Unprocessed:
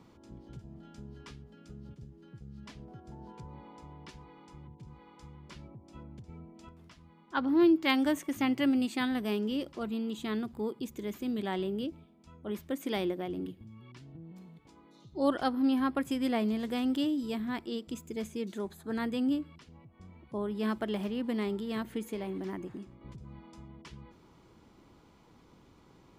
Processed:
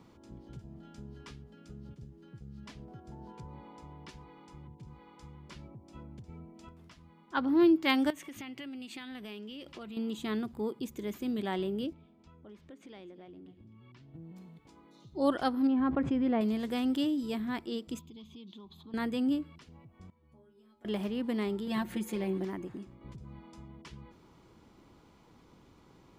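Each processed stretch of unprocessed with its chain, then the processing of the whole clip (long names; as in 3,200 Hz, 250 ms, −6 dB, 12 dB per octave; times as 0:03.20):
0:08.10–0:09.97: parametric band 2,800 Hz +8.5 dB 1.5 octaves + downward compressor 8 to 1, threshold −41 dBFS
0:11.93–0:14.14: low-pass filter 4,900 Hz + downward compressor 3 to 1, threshold −53 dBFS + single-tap delay 257 ms −16.5 dB
0:15.67–0:16.41: head-to-tape spacing loss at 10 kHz 40 dB + envelope flattener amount 70%
0:17.99–0:18.94: drawn EQ curve 250 Hz 0 dB, 600 Hz −12 dB, 1,100 Hz +4 dB, 1,600 Hz −21 dB, 3,400 Hz +10 dB, 9,300 Hz −24 dB, 13,000 Hz −12 dB + downward compressor 4 to 1, threshold −48 dBFS
0:20.10–0:20.85: downward compressor 12 to 1, threshold −44 dBFS + stiff-string resonator 73 Hz, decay 0.74 s, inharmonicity 0.008
0:21.67–0:22.45: comb filter 5.6 ms, depth 91% + upward compression, threshold −36 dBFS
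whole clip: no processing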